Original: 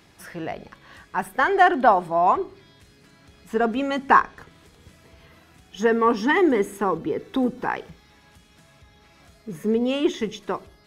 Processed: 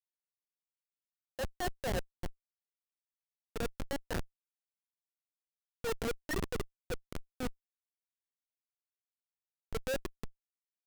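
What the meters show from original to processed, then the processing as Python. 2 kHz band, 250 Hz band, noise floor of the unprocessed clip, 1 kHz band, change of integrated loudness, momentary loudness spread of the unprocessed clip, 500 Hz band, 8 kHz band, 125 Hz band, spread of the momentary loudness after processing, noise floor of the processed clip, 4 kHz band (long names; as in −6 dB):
−19.0 dB, −20.0 dB, −55 dBFS, −26.0 dB, −18.0 dB, 16 LU, −17.5 dB, −4.5 dB, −5.5 dB, 12 LU, below −85 dBFS, −11.0 dB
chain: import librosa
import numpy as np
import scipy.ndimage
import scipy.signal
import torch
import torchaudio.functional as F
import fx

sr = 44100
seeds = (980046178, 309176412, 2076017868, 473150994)

y = fx.vowel_filter(x, sr, vowel='e')
y = fx.schmitt(y, sr, flips_db=-26.5)
y = fx.transient(y, sr, attack_db=-5, sustain_db=4)
y = F.gain(torch.from_numpy(y), 4.5).numpy()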